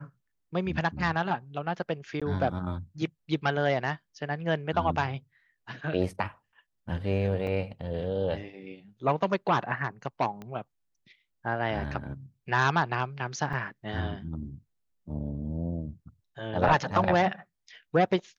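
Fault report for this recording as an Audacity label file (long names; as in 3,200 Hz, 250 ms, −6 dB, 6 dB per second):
2.200000	2.220000	drop-out 16 ms
7.470000	7.470000	drop-out 2.8 ms
10.420000	10.420000	click −27 dBFS
13.530000	13.530000	drop-out 3.7 ms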